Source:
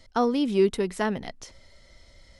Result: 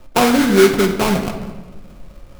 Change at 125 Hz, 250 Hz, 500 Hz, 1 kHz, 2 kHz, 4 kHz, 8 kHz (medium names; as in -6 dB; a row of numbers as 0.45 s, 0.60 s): +12.5 dB, +10.5 dB, +9.5 dB, +10.5 dB, +15.0 dB, +14.5 dB, +18.0 dB